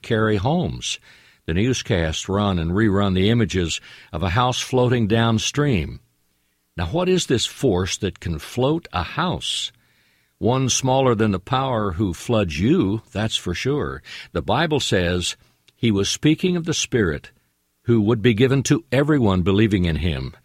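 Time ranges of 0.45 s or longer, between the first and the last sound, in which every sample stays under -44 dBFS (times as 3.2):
5.98–6.77
9.74–10.41
17.3–17.86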